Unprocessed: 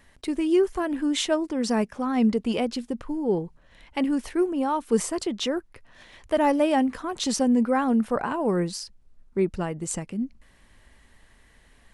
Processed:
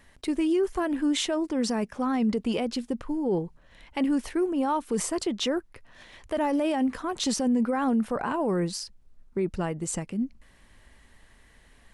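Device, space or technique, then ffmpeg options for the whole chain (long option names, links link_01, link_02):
clipper into limiter: -af "asoftclip=type=hard:threshold=-11.5dB,alimiter=limit=-18.5dB:level=0:latency=1:release=22"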